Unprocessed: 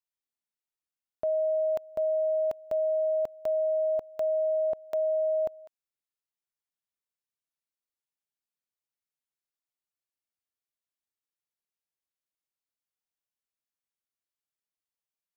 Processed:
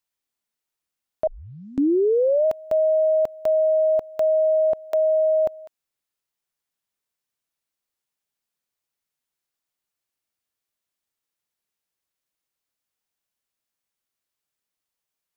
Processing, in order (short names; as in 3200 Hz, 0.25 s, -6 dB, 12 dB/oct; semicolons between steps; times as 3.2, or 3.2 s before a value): 1.27 tape start 1.19 s; 4.92–5.47 HPF 300 Hz; gain +8 dB